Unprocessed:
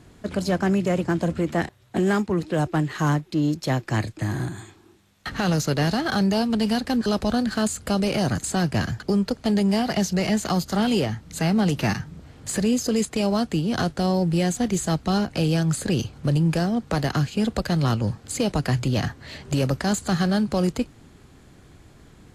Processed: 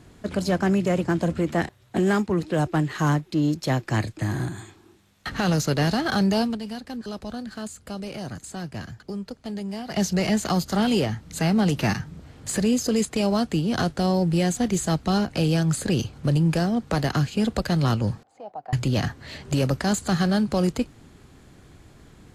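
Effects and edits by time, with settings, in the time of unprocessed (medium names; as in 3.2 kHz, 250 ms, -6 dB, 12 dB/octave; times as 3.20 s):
6.45–10.01 s: dip -11 dB, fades 0.13 s
18.23–18.73 s: band-pass filter 750 Hz, Q 7.6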